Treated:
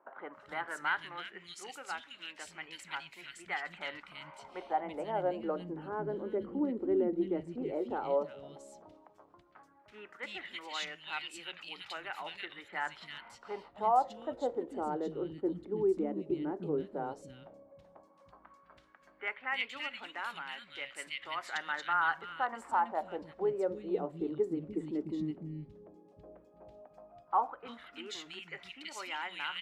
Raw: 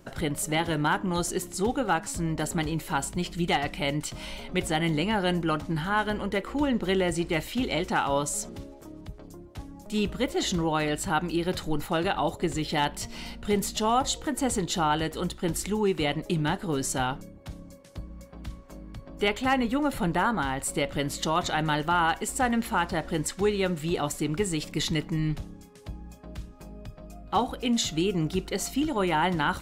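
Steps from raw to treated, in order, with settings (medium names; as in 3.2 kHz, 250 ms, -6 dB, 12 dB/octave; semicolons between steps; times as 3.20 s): three bands offset in time mids, lows, highs 300/330 ms, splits 230/2200 Hz; LFO band-pass sine 0.11 Hz 340–2600 Hz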